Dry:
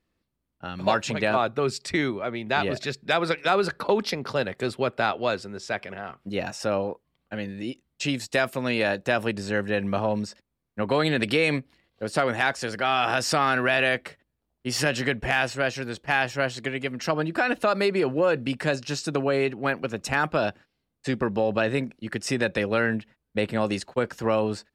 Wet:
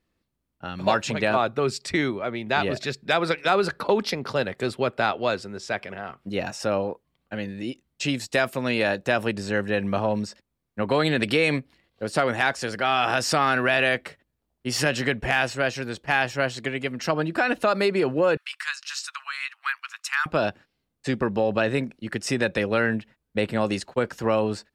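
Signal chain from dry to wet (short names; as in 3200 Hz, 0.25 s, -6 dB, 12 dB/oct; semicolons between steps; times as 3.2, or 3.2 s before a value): 18.37–20.26 steep high-pass 1100 Hz 48 dB/oct; gain +1 dB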